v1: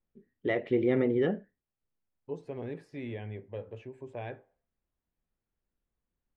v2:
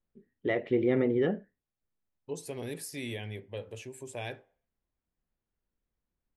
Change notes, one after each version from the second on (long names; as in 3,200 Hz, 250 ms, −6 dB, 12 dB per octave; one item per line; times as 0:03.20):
second voice: remove low-pass filter 1,600 Hz 12 dB per octave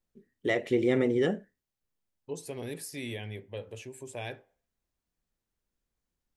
first voice: remove high-frequency loss of the air 360 metres